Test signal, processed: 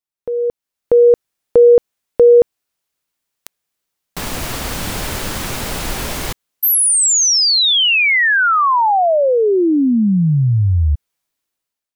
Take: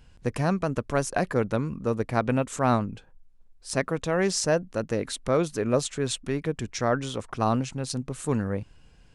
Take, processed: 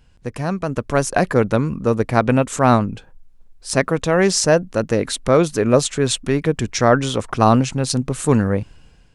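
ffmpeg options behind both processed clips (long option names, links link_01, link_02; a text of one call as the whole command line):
ffmpeg -i in.wav -af "dynaudnorm=framelen=310:gausssize=5:maxgain=15dB" out.wav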